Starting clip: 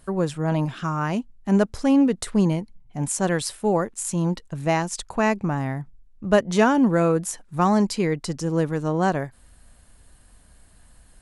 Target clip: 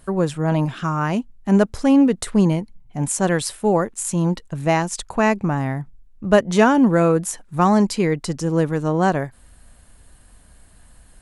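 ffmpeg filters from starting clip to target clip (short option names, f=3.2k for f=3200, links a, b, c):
-af "equalizer=f=5k:t=o:w=0.77:g=-2,volume=3.5dB"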